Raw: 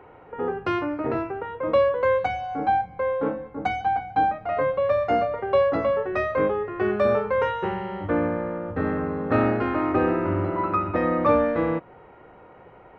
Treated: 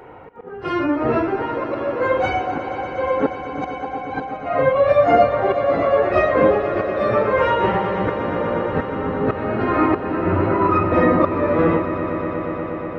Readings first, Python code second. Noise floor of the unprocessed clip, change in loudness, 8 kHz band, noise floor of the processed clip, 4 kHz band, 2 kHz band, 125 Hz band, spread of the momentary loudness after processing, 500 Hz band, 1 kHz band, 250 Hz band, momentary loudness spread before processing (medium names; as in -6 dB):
-49 dBFS, +5.0 dB, no reading, -32 dBFS, +5.5 dB, +5.5 dB, +6.0 dB, 11 LU, +5.0 dB, +4.5 dB, +5.5 dB, 8 LU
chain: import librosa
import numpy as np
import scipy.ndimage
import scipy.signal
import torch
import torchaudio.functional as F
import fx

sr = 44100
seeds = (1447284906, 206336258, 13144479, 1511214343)

y = fx.phase_scramble(x, sr, seeds[0], window_ms=100)
y = fx.auto_swell(y, sr, attack_ms=484.0)
y = fx.echo_swell(y, sr, ms=120, loudest=5, wet_db=-14.5)
y = y * 10.0 ** (7.5 / 20.0)